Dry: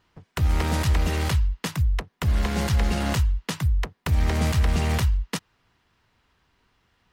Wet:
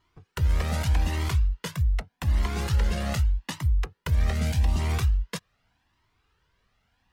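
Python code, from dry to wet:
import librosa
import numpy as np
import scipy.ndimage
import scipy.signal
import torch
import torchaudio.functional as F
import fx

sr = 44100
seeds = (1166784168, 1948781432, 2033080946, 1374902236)

y = fx.peak_eq(x, sr, hz=fx.line((4.32, 650.0), (4.78, 2100.0)), db=-12.5, octaves=0.54, at=(4.32, 4.78), fade=0.02)
y = fx.comb_cascade(y, sr, direction='rising', hz=0.83)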